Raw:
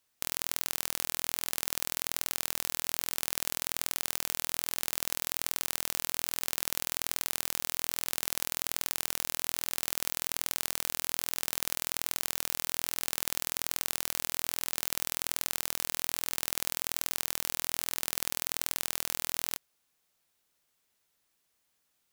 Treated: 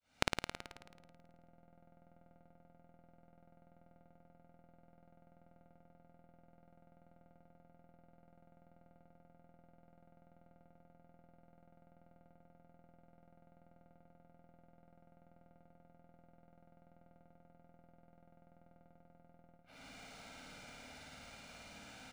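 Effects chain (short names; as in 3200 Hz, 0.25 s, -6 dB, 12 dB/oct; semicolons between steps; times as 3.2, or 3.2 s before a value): opening faded in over 0.75 s; LPF 10000 Hz 12 dB/oct; treble ducked by the level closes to 510 Hz, closed at -40.5 dBFS; high shelf 3400 Hz -10 dB; comb 1.4 ms, depth 76%; in parallel at 0 dB: compressor, threshold -56 dBFS, peak gain reduction 18.5 dB; on the sum: small resonant body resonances 260/2400/4000 Hz, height 12 dB, ringing for 45 ms; flipped gate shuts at -30 dBFS, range -41 dB; on a send: flutter echo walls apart 9.3 m, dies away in 1.3 s; on the sum: decimation joined by straight lines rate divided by 3×; gain +18 dB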